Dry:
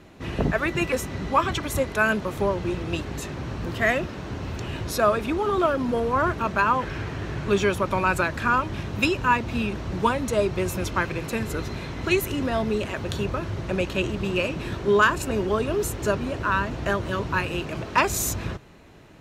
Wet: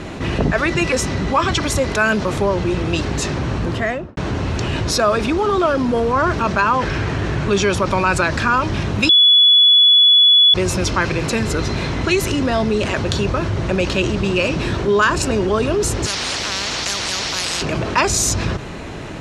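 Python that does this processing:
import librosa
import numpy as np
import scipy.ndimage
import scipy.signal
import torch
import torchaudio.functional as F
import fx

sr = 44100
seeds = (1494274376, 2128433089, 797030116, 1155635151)

y = fx.studio_fade_out(x, sr, start_s=3.55, length_s=0.62)
y = fx.spectral_comp(y, sr, ratio=10.0, at=(16.05, 17.61), fade=0.02)
y = fx.edit(y, sr, fx.bleep(start_s=9.09, length_s=1.45, hz=3410.0, db=-9.0), tone=tone)
y = scipy.signal.sosfilt(scipy.signal.butter(4, 9700.0, 'lowpass', fs=sr, output='sos'), y)
y = fx.dynamic_eq(y, sr, hz=5100.0, q=2.0, threshold_db=-49.0, ratio=4.0, max_db=7)
y = fx.env_flatten(y, sr, amount_pct=50)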